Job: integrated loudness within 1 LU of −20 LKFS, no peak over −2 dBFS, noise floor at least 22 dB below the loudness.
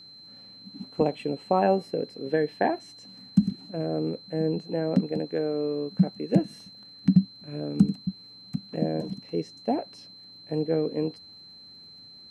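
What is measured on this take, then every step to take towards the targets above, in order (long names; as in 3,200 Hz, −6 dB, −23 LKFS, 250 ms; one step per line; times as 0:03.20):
crackle rate 29 per second; interfering tone 4,100 Hz; level of the tone −46 dBFS; integrated loudness −28.0 LKFS; sample peak −6.5 dBFS; target loudness −20.0 LKFS
→ click removal
notch filter 4,100 Hz, Q 30
level +8 dB
brickwall limiter −2 dBFS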